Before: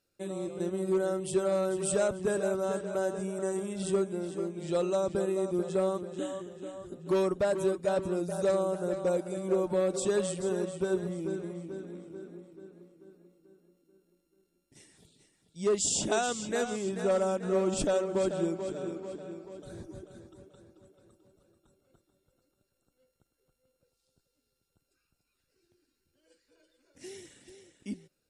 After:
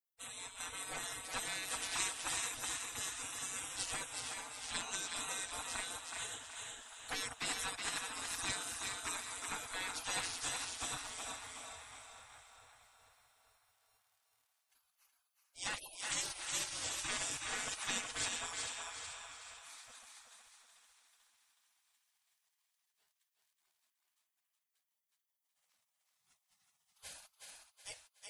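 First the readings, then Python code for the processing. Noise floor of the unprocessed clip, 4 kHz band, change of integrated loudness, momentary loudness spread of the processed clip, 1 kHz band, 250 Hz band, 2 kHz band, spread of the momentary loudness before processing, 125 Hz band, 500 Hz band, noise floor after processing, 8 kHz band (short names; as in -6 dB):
-80 dBFS, +3.5 dB, -9.0 dB, 15 LU, -7.0 dB, -23.5 dB, +1.0 dB, 16 LU, -19.0 dB, -26.5 dB, under -85 dBFS, 0.0 dB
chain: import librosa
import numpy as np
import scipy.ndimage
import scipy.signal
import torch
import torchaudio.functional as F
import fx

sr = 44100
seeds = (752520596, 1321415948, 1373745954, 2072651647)

y = fx.spec_gate(x, sr, threshold_db=-30, keep='weak')
y = fx.echo_thinned(y, sr, ms=371, feedback_pct=40, hz=340.0, wet_db=-4)
y = F.gain(torch.from_numpy(y), 8.0).numpy()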